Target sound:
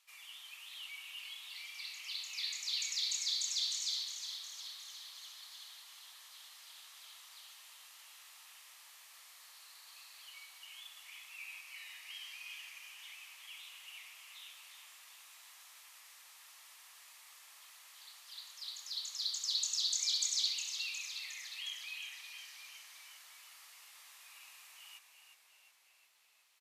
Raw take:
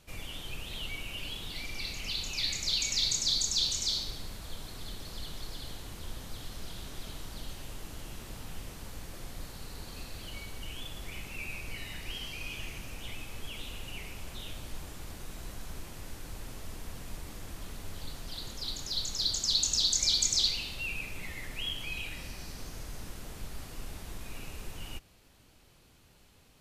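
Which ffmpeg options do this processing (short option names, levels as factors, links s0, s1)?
-filter_complex "[0:a]highpass=f=1100:w=0.5412,highpass=f=1100:w=1.3066,bandreject=f=1500:w=6.5,asplit=2[s0][s1];[s1]asplit=8[s2][s3][s4][s5][s6][s7][s8][s9];[s2]adelay=360,afreqshift=-68,volume=0.398[s10];[s3]adelay=720,afreqshift=-136,volume=0.245[s11];[s4]adelay=1080,afreqshift=-204,volume=0.153[s12];[s5]adelay=1440,afreqshift=-272,volume=0.0944[s13];[s6]adelay=1800,afreqshift=-340,volume=0.0589[s14];[s7]adelay=2160,afreqshift=-408,volume=0.0363[s15];[s8]adelay=2520,afreqshift=-476,volume=0.0226[s16];[s9]adelay=2880,afreqshift=-544,volume=0.014[s17];[s10][s11][s12][s13][s14][s15][s16][s17]amix=inputs=8:normalize=0[s18];[s0][s18]amix=inputs=2:normalize=0,volume=0.447"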